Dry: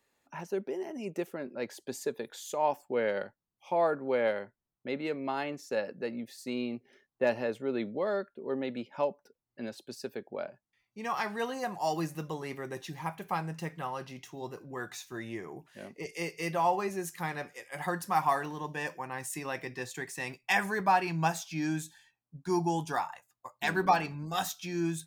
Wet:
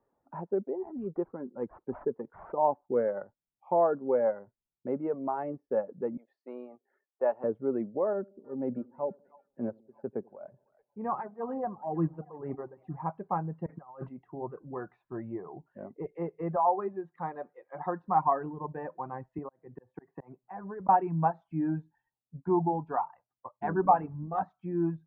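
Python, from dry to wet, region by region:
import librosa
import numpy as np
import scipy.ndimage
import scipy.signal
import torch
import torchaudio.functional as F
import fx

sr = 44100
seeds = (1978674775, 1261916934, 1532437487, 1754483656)

y = fx.chain(x, sr, fx.peak_eq(hz=620.0, db=-13.5, octaves=0.23),
    fx.resample_linear(factor=8), at=(0.78, 2.58))
y = fx.chain(y, sr, fx.highpass(hz=560.0, slope=12),
    fx.high_shelf(hz=4200.0, db=8.0), at=(6.17, 7.44))
y = fx.chain(y, sr, fx.tremolo_shape(shape='triangle', hz=2.1, depth_pct=85),
    fx.low_shelf(hz=330.0, db=5.5),
    fx.echo_split(split_hz=620.0, low_ms=86, high_ms=313, feedback_pct=52, wet_db=-15), at=(8.13, 12.97))
y = fx.chain(y, sr, fx.highpass(hz=44.0, slope=12),
    fx.over_compress(threshold_db=-43.0, ratio=-0.5), at=(13.66, 14.09))
y = fx.chain(y, sr, fx.highpass(hz=320.0, slope=6),
    fx.peak_eq(hz=3700.0, db=13.0, octaves=0.21), at=(16.56, 18.08))
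y = fx.chain(y, sr, fx.auto_swell(attack_ms=682.0),
    fx.air_absorb(metres=300.0),
    fx.band_squash(depth_pct=100), at=(19.38, 20.89))
y = fx.dereverb_blind(y, sr, rt60_s=1.0)
y = scipy.signal.sosfilt(scipy.signal.butter(4, 1100.0, 'lowpass', fs=sr, output='sos'), y)
y = y * 10.0 ** (3.5 / 20.0)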